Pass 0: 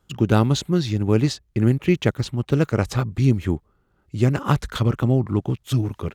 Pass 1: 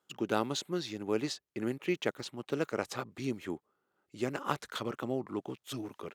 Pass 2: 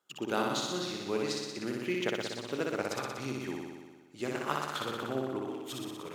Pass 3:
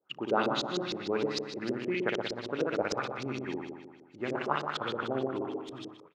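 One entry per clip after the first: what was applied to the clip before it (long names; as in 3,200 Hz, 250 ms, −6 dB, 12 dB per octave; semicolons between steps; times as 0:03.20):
high-pass filter 340 Hz 12 dB per octave; level −8.5 dB
low-shelf EQ 500 Hz −5 dB; on a send: flutter between parallel walls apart 10.4 metres, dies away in 1.4 s
fade-out on the ending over 0.53 s; auto-filter low-pass saw up 6.5 Hz 370–5,900 Hz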